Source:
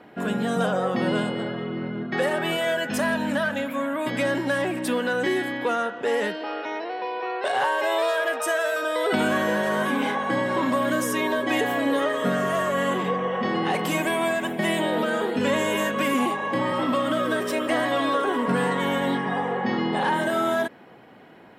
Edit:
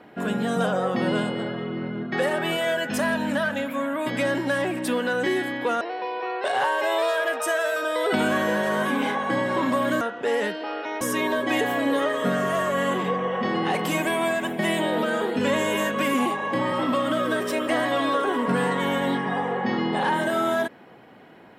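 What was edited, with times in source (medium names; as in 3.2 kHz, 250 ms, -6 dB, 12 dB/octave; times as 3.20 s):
5.81–6.81 s: move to 11.01 s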